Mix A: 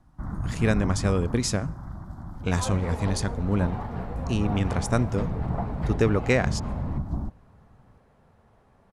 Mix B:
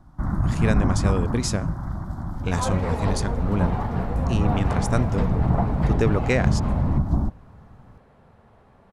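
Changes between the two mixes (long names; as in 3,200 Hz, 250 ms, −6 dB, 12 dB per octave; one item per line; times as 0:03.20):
first sound +8.0 dB
second sound +6.0 dB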